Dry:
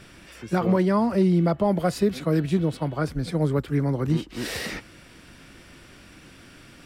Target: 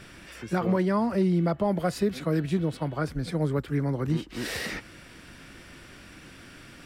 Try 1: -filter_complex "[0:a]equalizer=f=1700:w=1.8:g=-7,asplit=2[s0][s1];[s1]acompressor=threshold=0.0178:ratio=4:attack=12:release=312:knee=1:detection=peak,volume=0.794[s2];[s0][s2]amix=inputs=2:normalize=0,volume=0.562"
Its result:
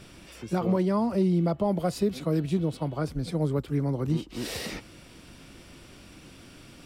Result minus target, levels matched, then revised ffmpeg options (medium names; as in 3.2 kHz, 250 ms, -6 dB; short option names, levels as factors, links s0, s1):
2 kHz band -6.5 dB
-filter_complex "[0:a]equalizer=f=1700:w=1.8:g=2.5,asplit=2[s0][s1];[s1]acompressor=threshold=0.0178:ratio=4:attack=12:release=312:knee=1:detection=peak,volume=0.794[s2];[s0][s2]amix=inputs=2:normalize=0,volume=0.562"